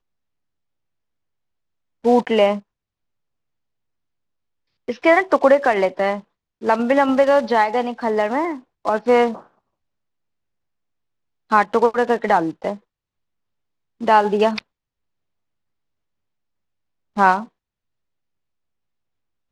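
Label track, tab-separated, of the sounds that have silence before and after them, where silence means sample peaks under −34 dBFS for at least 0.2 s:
2.040000	2.590000	sound
4.880000	6.200000	sound
6.620000	8.590000	sound
8.850000	9.390000	sound
11.510000	12.760000	sound
14.010000	14.600000	sound
17.170000	17.450000	sound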